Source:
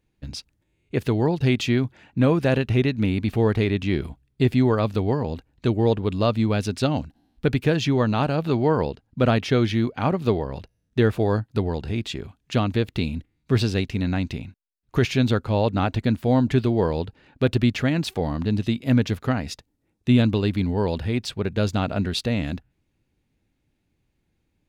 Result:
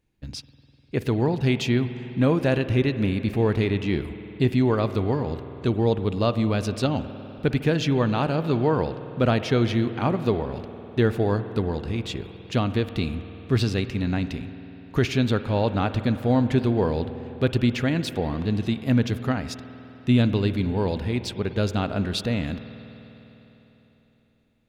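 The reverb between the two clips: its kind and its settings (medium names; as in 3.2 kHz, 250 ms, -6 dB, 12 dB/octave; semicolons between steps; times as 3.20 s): spring tank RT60 3.8 s, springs 50 ms, chirp 80 ms, DRR 11 dB; trim -1.5 dB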